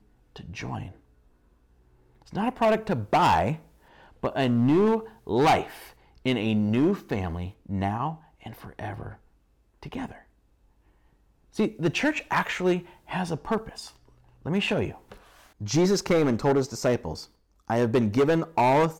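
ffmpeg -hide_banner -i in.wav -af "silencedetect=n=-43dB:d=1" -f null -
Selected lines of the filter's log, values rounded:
silence_start: 0.92
silence_end: 2.22 | silence_duration: 1.30
silence_start: 10.21
silence_end: 11.55 | silence_duration: 1.34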